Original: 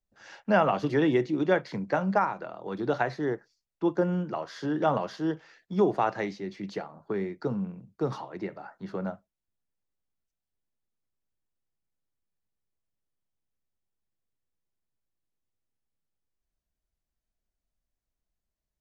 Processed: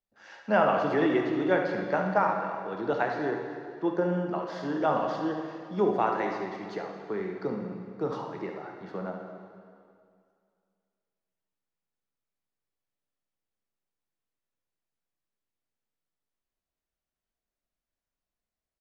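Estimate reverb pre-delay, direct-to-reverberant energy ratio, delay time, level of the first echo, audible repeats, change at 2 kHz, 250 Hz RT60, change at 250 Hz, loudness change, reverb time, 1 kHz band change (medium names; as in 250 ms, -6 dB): 7 ms, 1.5 dB, 71 ms, -8.0 dB, 1, +1.0 dB, 2.2 s, -1.5 dB, 0.0 dB, 2.2 s, +1.5 dB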